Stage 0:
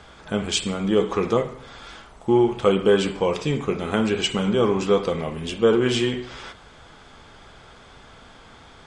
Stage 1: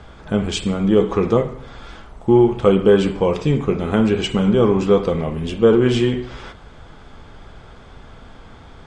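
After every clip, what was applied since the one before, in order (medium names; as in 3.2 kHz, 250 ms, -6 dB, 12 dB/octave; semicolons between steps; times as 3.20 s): tilt EQ -2 dB/octave; trim +2 dB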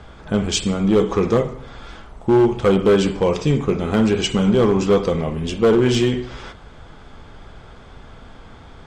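dynamic bell 6 kHz, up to +8 dB, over -48 dBFS, Q 1.2; hard clipper -9.5 dBFS, distortion -15 dB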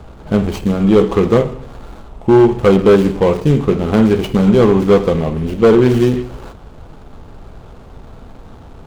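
median filter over 25 samples; trim +5.5 dB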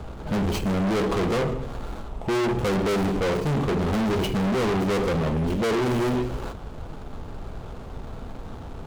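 hard clipper -22 dBFS, distortion -3 dB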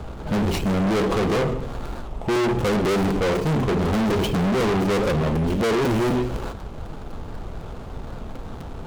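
crackling interface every 0.25 s, samples 256, repeat, from 0.60 s; warped record 78 rpm, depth 160 cents; trim +2.5 dB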